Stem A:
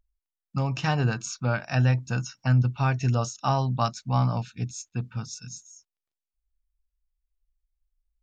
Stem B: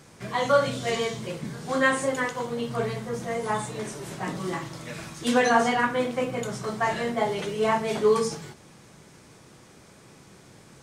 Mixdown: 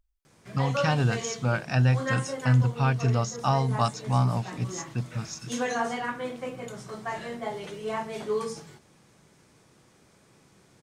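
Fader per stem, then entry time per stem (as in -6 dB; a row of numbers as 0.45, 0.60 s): 0.0, -8.0 dB; 0.00, 0.25 s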